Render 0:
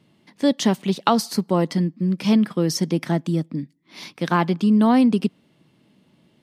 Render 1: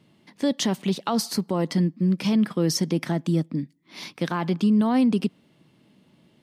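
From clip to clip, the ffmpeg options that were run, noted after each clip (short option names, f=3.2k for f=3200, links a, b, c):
-af "alimiter=limit=-14dB:level=0:latency=1:release=44"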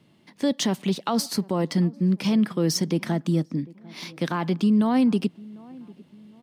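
-filter_complex "[0:a]acrossover=split=530|5200[a][b][c];[c]acrusher=bits=4:mode=log:mix=0:aa=0.000001[d];[a][b][d]amix=inputs=3:normalize=0,asplit=2[e][f];[f]adelay=748,lowpass=f=940:p=1,volume=-22dB,asplit=2[g][h];[h]adelay=748,lowpass=f=940:p=1,volume=0.46,asplit=2[i][j];[j]adelay=748,lowpass=f=940:p=1,volume=0.46[k];[e][g][i][k]amix=inputs=4:normalize=0"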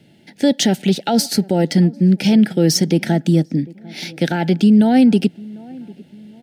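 -af "asuperstop=centerf=1100:order=8:qfactor=2.3,volume=8.5dB"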